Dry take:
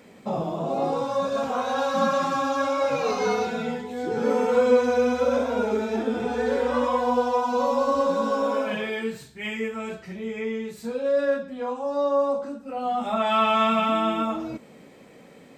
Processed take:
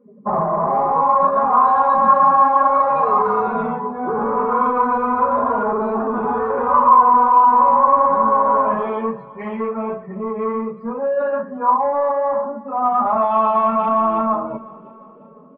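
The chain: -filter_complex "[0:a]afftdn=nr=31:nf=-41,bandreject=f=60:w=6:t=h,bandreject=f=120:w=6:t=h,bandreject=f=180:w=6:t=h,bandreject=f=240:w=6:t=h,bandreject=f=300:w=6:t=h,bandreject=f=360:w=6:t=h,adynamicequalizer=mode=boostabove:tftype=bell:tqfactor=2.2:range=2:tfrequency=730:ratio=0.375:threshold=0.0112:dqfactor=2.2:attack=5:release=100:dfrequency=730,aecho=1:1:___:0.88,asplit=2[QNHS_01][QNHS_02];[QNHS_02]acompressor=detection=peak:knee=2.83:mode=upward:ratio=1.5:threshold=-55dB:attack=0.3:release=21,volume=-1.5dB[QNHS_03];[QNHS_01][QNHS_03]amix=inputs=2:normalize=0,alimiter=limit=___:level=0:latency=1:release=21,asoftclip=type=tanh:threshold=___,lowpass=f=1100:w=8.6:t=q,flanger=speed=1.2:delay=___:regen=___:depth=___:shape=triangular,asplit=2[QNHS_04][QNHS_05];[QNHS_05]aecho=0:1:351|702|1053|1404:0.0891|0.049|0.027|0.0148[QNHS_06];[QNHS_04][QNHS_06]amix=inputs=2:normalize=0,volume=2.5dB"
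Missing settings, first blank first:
4.9, -11.5dB, -16dB, 8.4, -79, 4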